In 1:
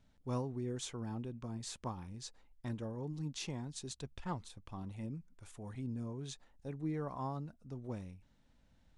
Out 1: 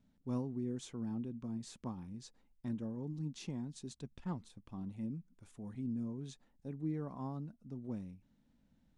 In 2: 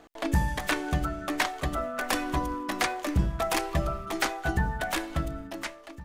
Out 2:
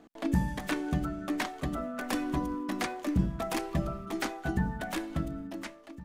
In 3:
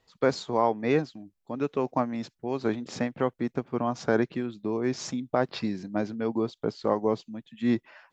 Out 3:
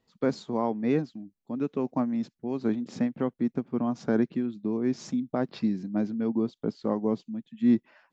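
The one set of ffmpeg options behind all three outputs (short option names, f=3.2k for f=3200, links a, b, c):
-af "equalizer=f=220:w=1:g=12,volume=-7.5dB"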